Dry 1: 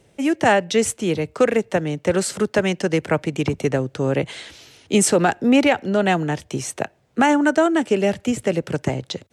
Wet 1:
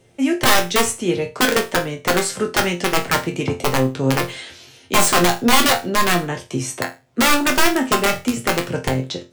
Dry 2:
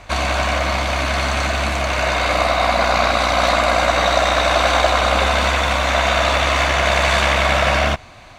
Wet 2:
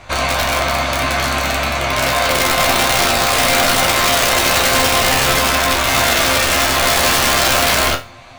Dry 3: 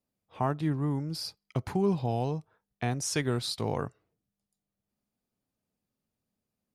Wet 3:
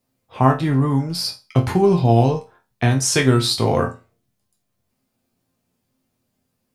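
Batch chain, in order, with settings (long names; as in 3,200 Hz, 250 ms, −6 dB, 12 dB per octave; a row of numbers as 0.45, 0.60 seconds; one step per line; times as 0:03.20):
wrap-around overflow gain 10 dB
resonators tuned to a chord F2 sus4, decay 0.28 s
normalise the peak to −2 dBFS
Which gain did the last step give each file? +13.5, +14.5, +25.0 decibels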